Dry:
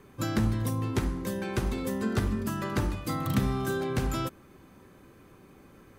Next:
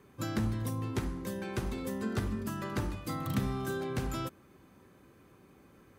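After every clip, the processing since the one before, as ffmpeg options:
ffmpeg -i in.wav -af "highpass=45,volume=-5dB" out.wav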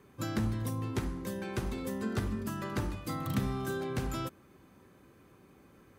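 ffmpeg -i in.wav -af anull out.wav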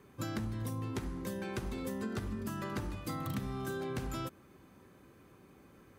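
ffmpeg -i in.wav -af "acompressor=threshold=-34dB:ratio=5" out.wav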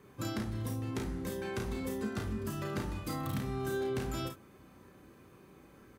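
ffmpeg -i in.wav -af "aecho=1:1:33|53|69:0.631|0.398|0.178" out.wav

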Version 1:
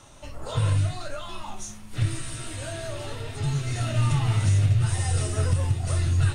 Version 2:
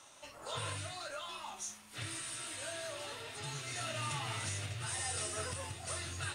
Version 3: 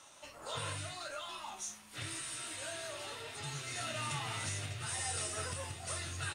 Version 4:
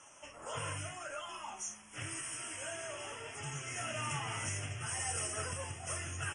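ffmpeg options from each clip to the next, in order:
ffmpeg -i in.wav -af "highpass=frequency=950:poles=1,volume=-3.5dB" out.wav
ffmpeg -i in.wav -filter_complex "[0:a]asplit=2[link_01][link_02];[link_02]adelay=13,volume=-11.5dB[link_03];[link_01][link_03]amix=inputs=2:normalize=0" out.wav
ffmpeg -i in.wav -af "asuperstop=centerf=4100:order=12:qfactor=2.3,volume=1dB" -ar 32000 -c:a libmp3lame -b:a 40k out.mp3

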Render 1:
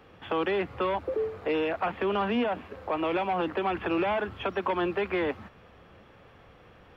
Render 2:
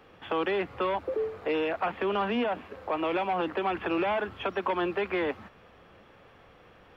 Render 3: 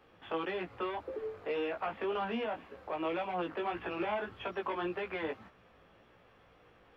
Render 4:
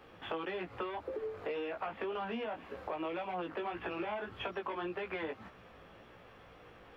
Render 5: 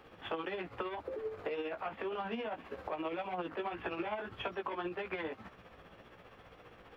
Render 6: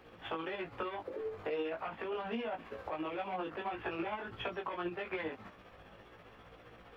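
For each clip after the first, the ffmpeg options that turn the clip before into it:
ffmpeg -i in.wav -af "equalizer=frequency=79:width=0.46:gain=-5" out.wav
ffmpeg -i in.wav -af "flanger=delay=16.5:depth=2.3:speed=1.8,volume=-4dB" out.wav
ffmpeg -i in.wav -af "acompressor=threshold=-43dB:ratio=4,volume=6dB" out.wav
ffmpeg -i in.wav -af "tremolo=f=15:d=0.48,volume=2dB" out.wav
ffmpeg -i in.wav -af "flanger=delay=17:depth=3.1:speed=0.44,volume=3dB" out.wav

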